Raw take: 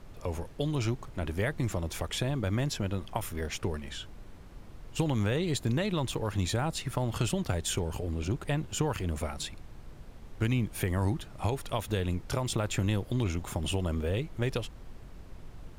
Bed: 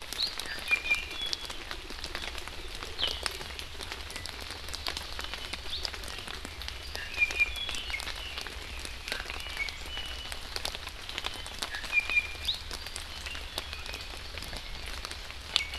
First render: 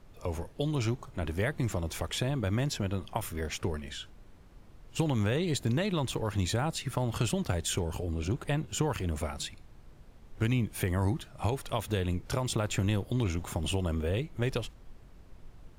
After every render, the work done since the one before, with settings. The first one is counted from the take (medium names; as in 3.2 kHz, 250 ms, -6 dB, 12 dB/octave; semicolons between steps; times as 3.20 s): noise print and reduce 6 dB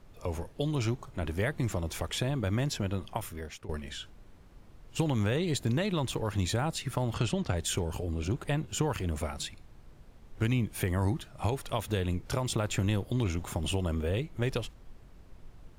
3.05–3.69 s: fade out, to -15 dB; 7.14–7.57 s: low-pass 6.2 kHz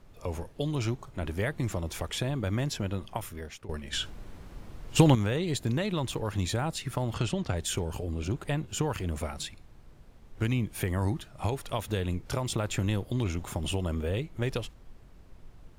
3.93–5.15 s: gain +9.5 dB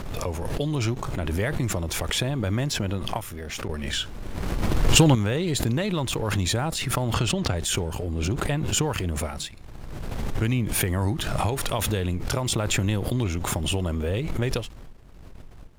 waveshaping leveller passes 1; swell ahead of each attack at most 25 dB/s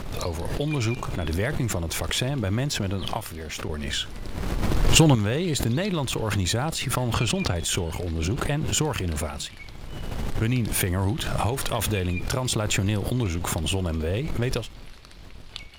add bed -11 dB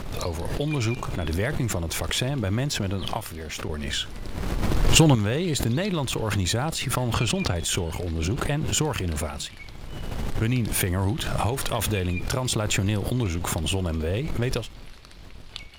no audible change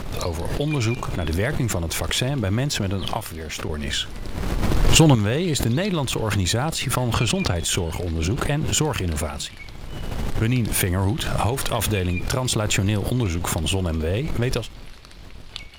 trim +3 dB; peak limiter -3 dBFS, peak gain reduction 2 dB